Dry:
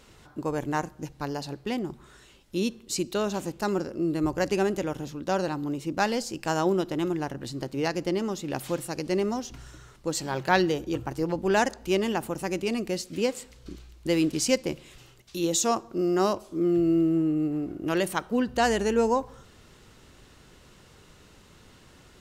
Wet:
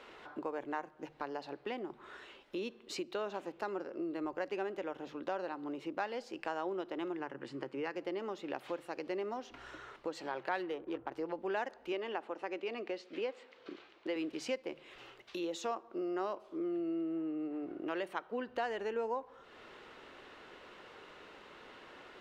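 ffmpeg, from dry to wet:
-filter_complex "[0:a]asettb=1/sr,asplit=3[a][b][c];[a]atrim=end=7.194[d];[b]atrim=start=7.19:end=7.96,asetpts=PTS-STARTPTS,afade=t=in:d=0.004:c=qsin,afade=t=out:st=0.766:d=0.004:c=qsin,highpass=140,equalizer=f=140:t=q:w=4:g=8,equalizer=f=680:t=q:w=4:g=-9,equalizer=f=3.9k:t=q:w=4:g=-10,equalizer=f=6.1k:t=q:w=4:g=-4,lowpass=f=9.7k:w=0.5412,lowpass=f=9.7k:w=1.3066[e];[c]atrim=start=7.956[f];[d][e]acrossfade=d=0.004:c1=hsin:c2=qsin[g];[g][f]acrossfade=d=0.004:c1=qsin:c2=hsin,asettb=1/sr,asplit=3[h][i][j];[h]atrim=end=10.514[k];[i]atrim=start=10.51:end=11.12,asetpts=PTS-STARTPTS,afade=t=in:d=0.004:c=qsin,afade=t=out:st=0.606:d=0.004:c=qsin,adynamicsmooth=sensitivity=8:basefreq=790[l];[j]atrim=start=11.116[m];[k][l]acrossfade=d=0.004:c1=hsin:c2=qsin[n];[n][m]acrossfade=d=0.004:c1=qsin:c2=hsin,asettb=1/sr,asplit=3[o][p][q];[o]atrim=end=11.924[r];[p]atrim=start=11.92:end=14.16,asetpts=PTS-STARTPTS,afade=t=in:d=0.004:c=qsin,afade=t=out:st=2.236:d=0.004:c=qsin,highpass=250,lowpass=5.5k[s];[q]atrim=start=14.156[t];[r][s]acrossfade=d=0.004:c1=hsin:c2=qsin[u];[u][t]acrossfade=d=0.004:c1=qsin:c2=hsin,acrossover=split=320 3400:gain=0.0794 1 0.0708[v][w][x];[v][w][x]amix=inputs=3:normalize=0,bandreject=f=50:t=h:w=6,bandreject=f=100:t=h:w=6,bandreject=f=150:t=h:w=6,acompressor=threshold=-47dB:ratio=2.5,volume=5dB"

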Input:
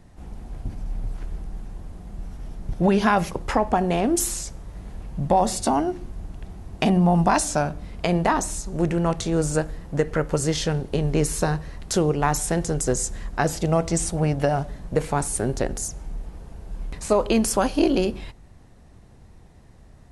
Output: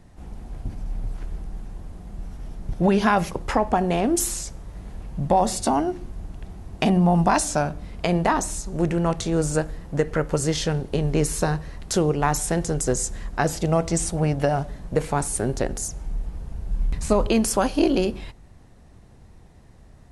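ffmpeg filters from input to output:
-filter_complex "[0:a]asettb=1/sr,asplit=3[a][b][c];[a]atrim=end=15.824[d];[b]atrim=start=15.82:end=17.28,asetpts=PTS-STARTPTS,afade=t=in:d=0.004:c=qsin,afade=t=out:st=1.456:d=0.004:c=qsin,asubboost=boost=5.5:cutoff=250[e];[c]atrim=start=17.276[f];[d][e]acrossfade=d=0.004:c1=hsin:c2=qsin[g];[g][f]acrossfade=d=0.004:c1=qsin:c2=hsin"

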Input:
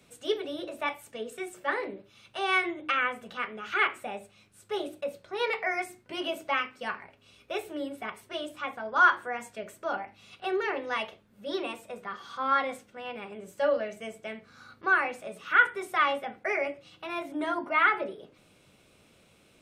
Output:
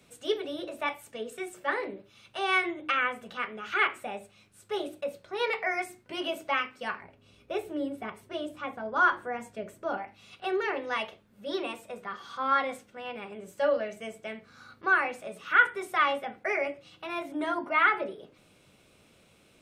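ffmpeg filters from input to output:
-filter_complex "[0:a]asettb=1/sr,asplit=3[a][b][c];[a]atrim=end=7.014[d];[b]atrim=start=7.01:end=9.97,asetpts=PTS-STARTPTS,afade=t=in:d=0.004:c=qsin,afade=t=out:st=2.956:d=0.004:c=qsin,tiltshelf=f=690:g=5[e];[c]atrim=start=9.966[f];[d][e]acrossfade=d=0.004:c1=hsin:c2=qsin[g];[g][f]acrossfade=d=0.004:c1=qsin:c2=hsin"

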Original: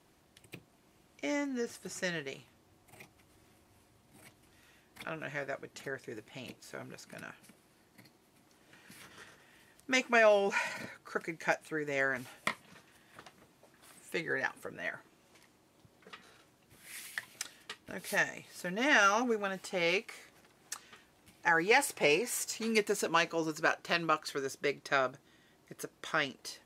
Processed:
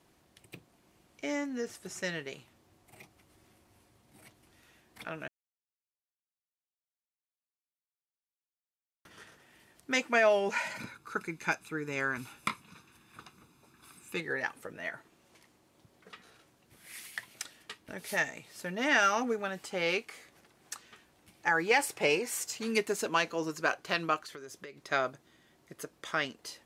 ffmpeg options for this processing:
-filter_complex "[0:a]asettb=1/sr,asplit=3[a][b][c];[a]atrim=end=10.784[d];[b]atrim=start=10.78:end=14.2,asetpts=PTS-STARTPTS,afade=t=in:d=0.004:c=qsin,afade=t=out:st=3.416:d=0.004:c=qsin,aecho=1:1:0.8:0.65,atrim=end_sample=150822[e];[c]atrim=start=14.196[f];[d][e]acrossfade=d=0.004:c1=hsin:c2=qsin[g];[g][f]acrossfade=d=0.004:c1=qsin:c2=hsin,asettb=1/sr,asplit=3[h][i][j];[h]atrim=end=24.164[k];[i]atrim=start=24.16:end=24.88,asetpts=PTS-STARTPTS,afade=t=in:d=0.004:c=qsin,afade=t=out:st=0.716:d=0.004:c=qsin,acompressor=threshold=-41dB:ratio=16:attack=3.2:release=140:knee=1:detection=peak[l];[j]atrim=start=24.876[m];[k][l]acrossfade=d=0.004:c1=hsin:c2=qsin[n];[n][m]acrossfade=d=0.004:c1=qsin:c2=hsin,asplit=3[o][p][q];[o]atrim=end=5.28,asetpts=PTS-STARTPTS,afade=t=out:st=5.276:d=0.004:c=hsin[r];[p]atrim=start=5.28:end=9.05,asetpts=PTS-STARTPTS,volume=0[s];[q]atrim=start=9.05,asetpts=PTS-STARTPTS,afade=t=in:d=0.004:c=hsin[t];[r][s][t]concat=n=3:v=0:a=1"

